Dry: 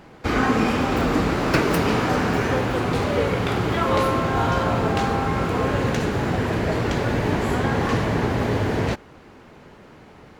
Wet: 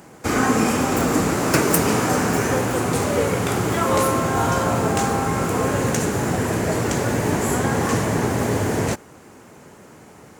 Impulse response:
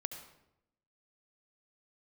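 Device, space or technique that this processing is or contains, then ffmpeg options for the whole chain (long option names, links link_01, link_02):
budget condenser microphone: -af "highpass=86,highshelf=frequency=5500:width_type=q:width=1.5:gain=12,volume=1.5dB"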